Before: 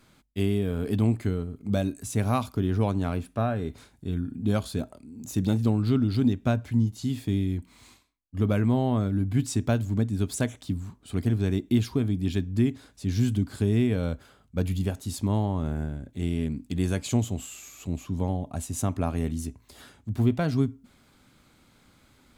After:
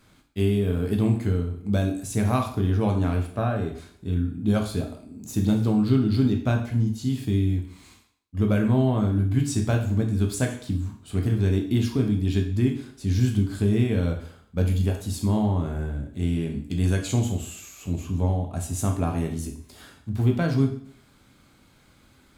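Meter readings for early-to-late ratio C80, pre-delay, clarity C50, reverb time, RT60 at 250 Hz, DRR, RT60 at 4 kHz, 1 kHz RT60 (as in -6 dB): 12.0 dB, 5 ms, 7.5 dB, 0.60 s, 0.60 s, 2.0 dB, 0.55 s, 0.60 s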